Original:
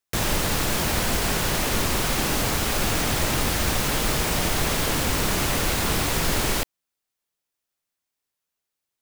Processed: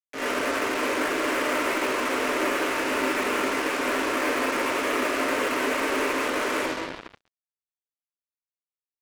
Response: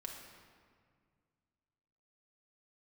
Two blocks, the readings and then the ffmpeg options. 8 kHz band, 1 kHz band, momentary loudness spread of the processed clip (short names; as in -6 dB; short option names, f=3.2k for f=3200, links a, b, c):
-10.0 dB, +1.5 dB, 2 LU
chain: -filter_complex "[0:a]alimiter=limit=-14.5dB:level=0:latency=1:release=54,asuperstop=centerf=680:order=4:qfactor=3.4,asplit=2[a][b];[b]adelay=14,volume=-12dB[c];[a][c]amix=inputs=2:normalize=0,flanger=delay=18:depth=2.7:speed=1.7,aeval=exprs='(tanh(89.1*val(0)+0.05)-tanh(0.05))/89.1':c=same[d];[1:a]atrim=start_sample=2205,asetrate=32193,aresample=44100[e];[d][e]afir=irnorm=-1:irlink=0,aresample=16000,acrusher=bits=3:mode=log:mix=0:aa=0.000001,aresample=44100,highpass=f=160:t=q:w=0.5412,highpass=f=160:t=q:w=1.307,lowpass=f=2.6k:t=q:w=0.5176,lowpass=f=2.6k:t=q:w=0.7071,lowpass=f=2.6k:t=q:w=1.932,afreqshift=110,acrusher=bits=7:mix=0:aa=0.5,dynaudnorm=f=120:g=3:m=12.5dB,volume=6.5dB"